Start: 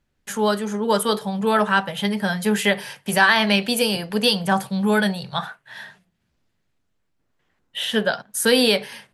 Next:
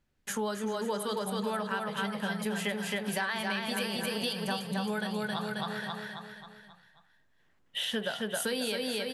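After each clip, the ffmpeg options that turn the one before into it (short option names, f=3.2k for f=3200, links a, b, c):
-filter_complex "[0:a]asplit=2[a][b];[b]aecho=0:1:268|536|804|1072|1340|1608:0.668|0.327|0.16|0.0786|0.0385|0.0189[c];[a][c]amix=inputs=2:normalize=0,acompressor=threshold=-26dB:ratio=6,volume=-4dB"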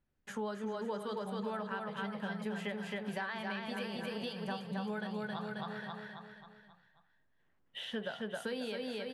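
-af "aemphasis=mode=reproduction:type=75fm,volume=-6dB"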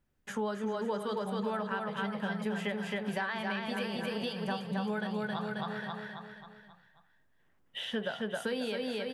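-af "bandreject=f=4.2k:w=19,volume=4.5dB"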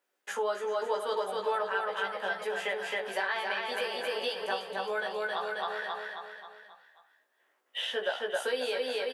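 -filter_complex "[0:a]highpass=f=410:w=0.5412,highpass=f=410:w=1.3066,asplit=2[a][b];[b]aecho=0:1:16|67:0.708|0.133[c];[a][c]amix=inputs=2:normalize=0,volume=3dB"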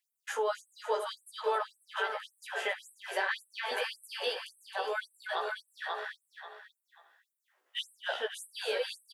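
-filter_complex "[0:a]asplit=2[a][b];[b]adelay=350,highpass=300,lowpass=3.4k,asoftclip=type=hard:threshold=-27dB,volume=-13dB[c];[a][c]amix=inputs=2:normalize=0,afftfilt=real='re*gte(b*sr/1024,230*pow(8000/230,0.5+0.5*sin(2*PI*1.8*pts/sr)))':imag='im*gte(b*sr/1024,230*pow(8000/230,0.5+0.5*sin(2*PI*1.8*pts/sr)))':win_size=1024:overlap=0.75"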